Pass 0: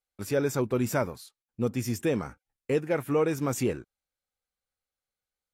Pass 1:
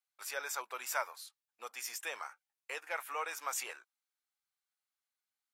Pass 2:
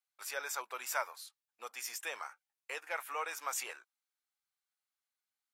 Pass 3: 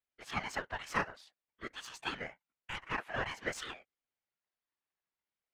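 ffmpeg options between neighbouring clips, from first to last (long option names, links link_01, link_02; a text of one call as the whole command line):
ffmpeg -i in.wav -af "highpass=frequency=840:width=0.5412,highpass=frequency=840:width=1.3066,volume=-1.5dB" out.wav
ffmpeg -i in.wav -af anull out.wav
ffmpeg -i in.wav -af "adynamicsmooth=sensitivity=5:basefreq=2900,afftfilt=real='hypot(re,im)*cos(2*PI*random(0))':imag='hypot(re,im)*sin(2*PI*random(1))':win_size=512:overlap=0.75,aeval=exprs='val(0)*sin(2*PI*640*n/s+640*0.35/0.52*sin(2*PI*0.52*n/s))':channel_layout=same,volume=11.5dB" out.wav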